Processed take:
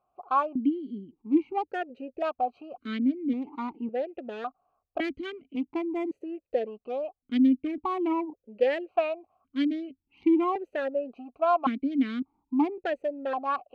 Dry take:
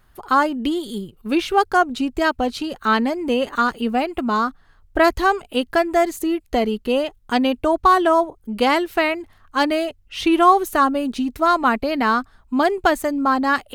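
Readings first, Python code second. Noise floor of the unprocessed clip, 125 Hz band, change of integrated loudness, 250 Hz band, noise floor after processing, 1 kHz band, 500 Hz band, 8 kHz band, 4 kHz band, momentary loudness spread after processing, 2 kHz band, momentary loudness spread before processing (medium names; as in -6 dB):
-55 dBFS, no reading, -10.0 dB, -6.0 dB, -84 dBFS, -13.0 dB, -9.5 dB, under -30 dB, -18.0 dB, 12 LU, -17.5 dB, 8 LU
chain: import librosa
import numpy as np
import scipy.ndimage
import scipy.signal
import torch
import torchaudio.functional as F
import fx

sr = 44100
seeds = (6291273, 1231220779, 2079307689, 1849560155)

p1 = fx.wiener(x, sr, points=25)
p2 = 10.0 ** (-20.5 / 20.0) * np.tanh(p1 / 10.0 ** (-20.5 / 20.0))
p3 = p1 + (p2 * 10.0 ** (-8.5 / 20.0))
y = fx.vowel_held(p3, sr, hz=1.8)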